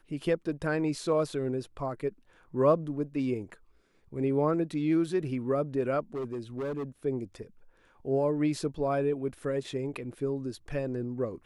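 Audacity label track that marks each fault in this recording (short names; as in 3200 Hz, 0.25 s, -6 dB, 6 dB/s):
6.150000	6.840000	clipped -30.5 dBFS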